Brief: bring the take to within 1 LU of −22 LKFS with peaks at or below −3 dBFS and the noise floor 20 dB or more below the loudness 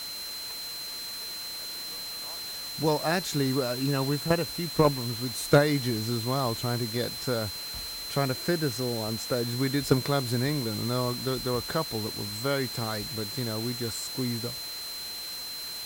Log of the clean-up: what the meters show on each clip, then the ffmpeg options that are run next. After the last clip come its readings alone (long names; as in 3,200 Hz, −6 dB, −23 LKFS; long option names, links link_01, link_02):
interfering tone 4,100 Hz; level of the tone −36 dBFS; background noise floor −37 dBFS; target noise floor −49 dBFS; integrated loudness −29.0 LKFS; sample peak −8.5 dBFS; target loudness −22.0 LKFS
→ -af "bandreject=frequency=4100:width=30"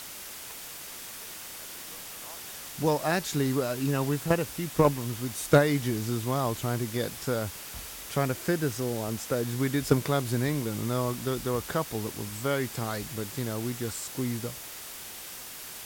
interfering tone none found; background noise floor −42 dBFS; target noise floor −50 dBFS
→ -af "afftdn=noise_reduction=8:noise_floor=-42"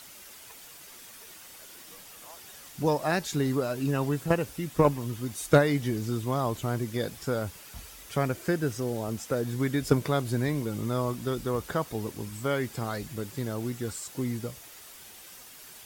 background noise floor −49 dBFS; target noise floor −50 dBFS
→ -af "afftdn=noise_reduction=6:noise_floor=-49"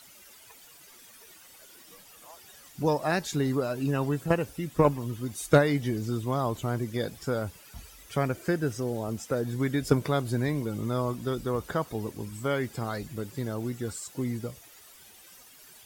background noise floor −53 dBFS; integrated loudness −29.5 LKFS; sample peak −8.5 dBFS; target loudness −22.0 LKFS
→ -af "volume=7.5dB,alimiter=limit=-3dB:level=0:latency=1"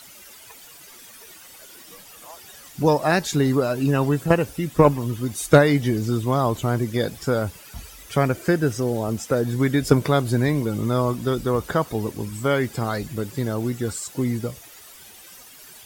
integrated loudness −22.0 LKFS; sample peak −3.0 dBFS; background noise floor −45 dBFS